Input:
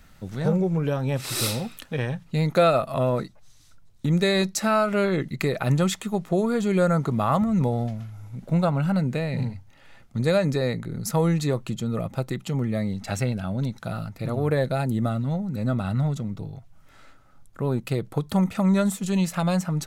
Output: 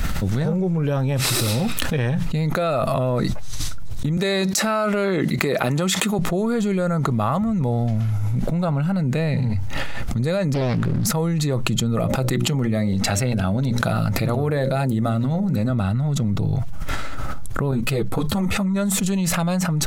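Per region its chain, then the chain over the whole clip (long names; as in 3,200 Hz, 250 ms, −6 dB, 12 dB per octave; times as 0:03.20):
0:04.17–0:06.19: high-pass filter 210 Hz + downward compressor, threshold −24 dBFS
0:10.54–0:11.07: converter with a step at zero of −42 dBFS + high-shelf EQ 6,500 Hz −9.5 dB + highs frequency-modulated by the lows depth 0.63 ms
0:11.96–0:15.70: low-shelf EQ 110 Hz −5.5 dB + mains-hum notches 60/120/180/240/300/360/420/480/540/600 Hz
0:17.71–0:18.76: de-essing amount 55% + string-ensemble chorus
whole clip: de-essing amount 50%; low-shelf EQ 94 Hz +8 dB; envelope flattener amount 100%; level −6 dB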